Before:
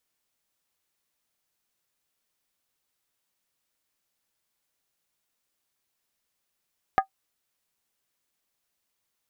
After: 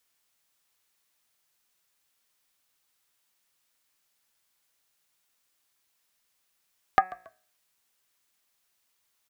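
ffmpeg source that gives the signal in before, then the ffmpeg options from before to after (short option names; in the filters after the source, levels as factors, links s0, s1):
-f lavfi -i "aevalsrc='0.251*pow(10,-3*t/0.1)*sin(2*PI*773*t)+0.126*pow(10,-3*t/0.079)*sin(2*PI*1232.2*t)+0.0631*pow(10,-3*t/0.068)*sin(2*PI*1651.1*t)+0.0316*pow(10,-3*t/0.066)*sin(2*PI*1774.8*t)+0.0158*pow(10,-3*t/0.061)*sin(2*PI*2050.8*t)':d=0.63:s=44100"
-filter_complex "[0:a]bandreject=f=185.2:t=h:w=4,bandreject=f=370.4:t=h:w=4,bandreject=f=555.6:t=h:w=4,bandreject=f=740.8:t=h:w=4,bandreject=f=926:t=h:w=4,bandreject=f=1111.2:t=h:w=4,bandreject=f=1296.4:t=h:w=4,bandreject=f=1481.6:t=h:w=4,bandreject=f=1666.8:t=h:w=4,bandreject=f=1852:t=h:w=4,bandreject=f=2037.2:t=h:w=4,bandreject=f=2222.4:t=h:w=4,bandreject=f=2407.6:t=h:w=4,bandreject=f=2592.8:t=h:w=4,acrossover=split=820[s0][s1];[s1]acontrast=39[s2];[s0][s2]amix=inputs=2:normalize=0,asplit=3[s3][s4][s5];[s4]adelay=139,afreqshift=-57,volume=0.0891[s6];[s5]adelay=278,afreqshift=-114,volume=0.0295[s7];[s3][s6][s7]amix=inputs=3:normalize=0"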